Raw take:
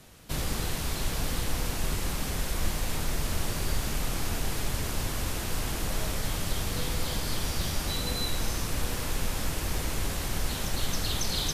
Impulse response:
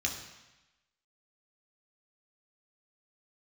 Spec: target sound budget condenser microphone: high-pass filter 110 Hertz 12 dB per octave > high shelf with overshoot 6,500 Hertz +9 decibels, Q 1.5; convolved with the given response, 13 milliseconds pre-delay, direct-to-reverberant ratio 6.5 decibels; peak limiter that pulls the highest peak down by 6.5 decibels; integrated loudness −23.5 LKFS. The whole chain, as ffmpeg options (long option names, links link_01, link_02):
-filter_complex "[0:a]alimiter=limit=-21.5dB:level=0:latency=1,asplit=2[link_01][link_02];[1:a]atrim=start_sample=2205,adelay=13[link_03];[link_02][link_03]afir=irnorm=-1:irlink=0,volume=-11.5dB[link_04];[link_01][link_04]amix=inputs=2:normalize=0,highpass=110,highshelf=frequency=6500:width_type=q:width=1.5:gain=9,volume=4.5dB"